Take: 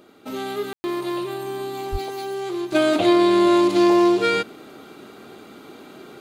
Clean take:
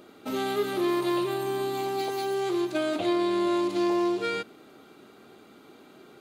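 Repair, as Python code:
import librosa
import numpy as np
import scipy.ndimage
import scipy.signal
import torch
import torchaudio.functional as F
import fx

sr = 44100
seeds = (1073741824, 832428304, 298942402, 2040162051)

y = fx.fix_deplosive(x, sr, at_s=(1.91,))
y = fx.fix_ambience(y, sr, seeds[0], print_start_s=5.14, print_end_s=5.64, start_s=0.73, end_s=0.84)
y = fx.gain(y, sr, db=fx.steps((0.0, 0.0), (2.72, -9.5)))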